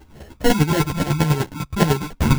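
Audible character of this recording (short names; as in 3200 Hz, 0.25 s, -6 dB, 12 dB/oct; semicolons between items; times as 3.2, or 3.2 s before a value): phasing stages 4, 1.7 Hz, lowest notch 420–1000 Hz; chopped level 10 Hz, depth 65%, duty 20%; aliases and images of a low sample rate 1200 Hz, jitter 0%; a shimmering, thickened sound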